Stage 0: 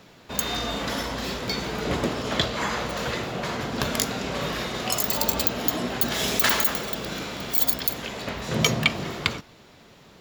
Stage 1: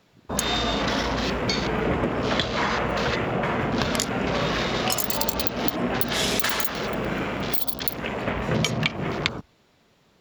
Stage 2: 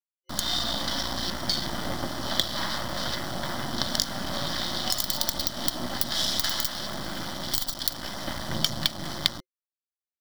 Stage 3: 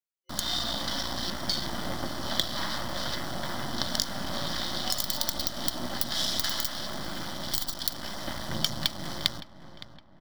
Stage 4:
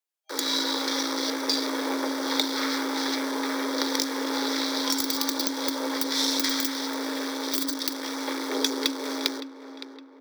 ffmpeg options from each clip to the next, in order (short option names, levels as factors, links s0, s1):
-af "afwtdn=0.0158,acompressor=threshold=0.0501:ratio=12,volume=2.11"
-af "acrusher=bits=3:dc=4:mix=0:aa=0.000001,superequalizer=7b=0.282:12b=0.355:13b=2.24:14b=2.82,volume=0.708"
-filter_complex "[0:a]asplit=2[s0][s1];[s1]adelay=564,lowpass=f=2200:p=1,volume=0.224,asplit=2[s2][s3];[s3]adelay=564,lowpass=f=2200:p=1,volume=0.52,asplit=2[s4][s5];[s5]adelay=564,lowpass=f=2200:p=1,volume=0.52,asplit=2[s6][s7];[s7]adelay=564,lowpass=f=2200:p=1,volume=0.52,asplit=2[s8][s9];[s9]adelay=564,lowpass=f=2200:p=1,volume=0.52[s10];[s0][s2][s4][s6][s8][s10]amix=inputs=6:normalize=0,volume=0.75"
-filter_complex "[0:a]afreqshift=270,acrossover=split=300|670|2900[s0][s1][s2][s3];[s3]volume=8.91,asoftclip=hard,volume=0.112[s4];[s0][s1][s2][s4]amix=inputs=4:normalize=0,volume=1.5"